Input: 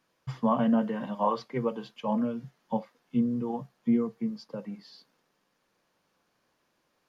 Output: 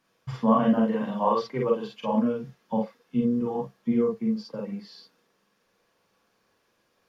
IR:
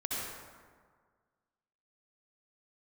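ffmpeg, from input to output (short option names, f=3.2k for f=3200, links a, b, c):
-filter_complex "[1:a]atrim=start_sample=2205,atrim=end_sample=3969,asetrate=70560,aresample=44100[a];[0:a][a]afir=irnorm=-1:irlink=0,volume=7.5dB"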